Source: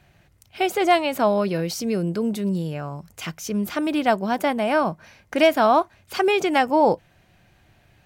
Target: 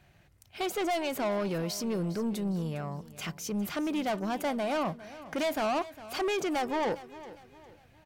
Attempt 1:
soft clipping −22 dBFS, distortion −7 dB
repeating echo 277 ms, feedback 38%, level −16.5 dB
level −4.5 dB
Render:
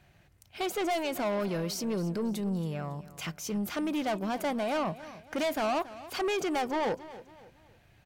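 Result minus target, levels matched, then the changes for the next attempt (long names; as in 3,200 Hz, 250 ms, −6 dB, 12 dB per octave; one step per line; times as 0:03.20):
echo 129 ms early
change: repeating echo 406 ms, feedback 38%, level −16.5 dB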